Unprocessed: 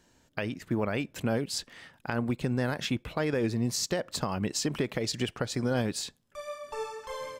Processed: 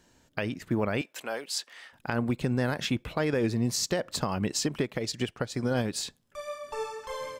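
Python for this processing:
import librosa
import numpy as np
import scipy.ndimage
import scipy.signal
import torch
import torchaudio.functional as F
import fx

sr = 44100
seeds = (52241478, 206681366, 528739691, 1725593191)

y = fx.highpass(x, sr, hz=660.0, slope=12, at=(1.01, 1.93))
y = fx.upward_expand(y, sr, threshold_db=-40.0, expansion=1.5, at=(4.67, 5.93))
y = y * librosa.db_to_amplitude(1.5)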